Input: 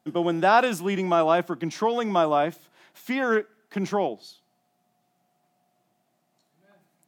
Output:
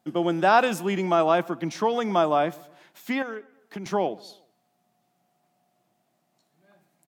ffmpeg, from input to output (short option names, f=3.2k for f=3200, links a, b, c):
-filter_complex "[0:a]asettb=1/sr,asplit=3[a][b][c];[a]atrim=end=3.224[d];[b]atrim=start=3.22:end=3.86,asetpts=PTS-STARTPTS,afade=t=in:d=0.004:c=qsin,afade=t=out:st=0.636:d=0.004:c=qsin,acompressor=threshold=-33dB:ratio=8[e];[c]atrim=start=3.856[f];[d][e]acrossfade=d=0.004:c1=hsin:c2=qsin[g];[g][f]acrossfade=d=0.004:c1=qsin:c2=hsin,asplit=2[h][i];[i]adelay=123,lowpass=f=2.7k:p=1,volume=-23dB,asplit=2[j][k];[k]adelay=123,lowpass=f=2.7k:p=1,volume=0.5,asplit=2[l][m];[m]adelay=123,lowpass=f=2.7k:p=1,volume=0.5[n];[h][j][l][n]amix=inputs=4:normalize=0"